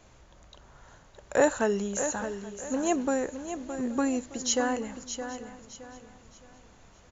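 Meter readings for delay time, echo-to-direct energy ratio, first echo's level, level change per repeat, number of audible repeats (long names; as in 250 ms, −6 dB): 617 ms, −8.5 dB, −9.5 dB, repeats not evenly spaced, 5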